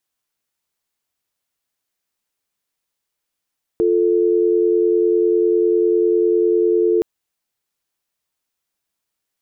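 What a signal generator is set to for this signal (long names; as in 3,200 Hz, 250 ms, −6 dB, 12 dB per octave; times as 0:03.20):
call progress tone dial tone, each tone −15.5 dBFS 3.22 s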